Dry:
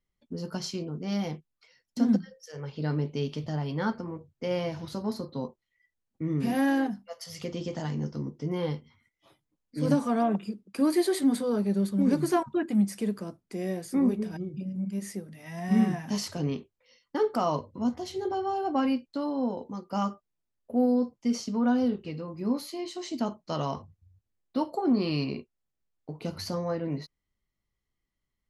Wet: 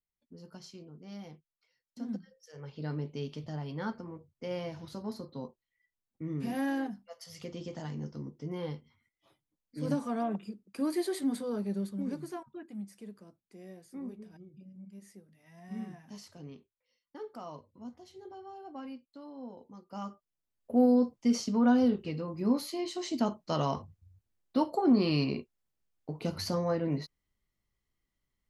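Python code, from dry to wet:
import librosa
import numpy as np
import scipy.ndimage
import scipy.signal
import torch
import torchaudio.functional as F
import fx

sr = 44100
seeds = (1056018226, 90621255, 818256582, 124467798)

y = fx.gain(x, sr, db=fx.line((2.03, -15.0), (2.66, -7.0), (11.76, -7.0), (12.43, -17.0), (19.21, -17.0), (20.04, -11.0), (20.72, 0.5)))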